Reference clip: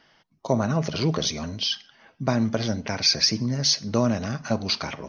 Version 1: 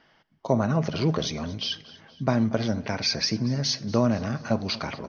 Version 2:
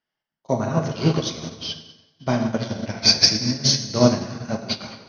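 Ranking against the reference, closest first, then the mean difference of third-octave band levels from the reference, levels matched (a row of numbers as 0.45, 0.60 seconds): 1, 2; 2.5, 5.5 decibels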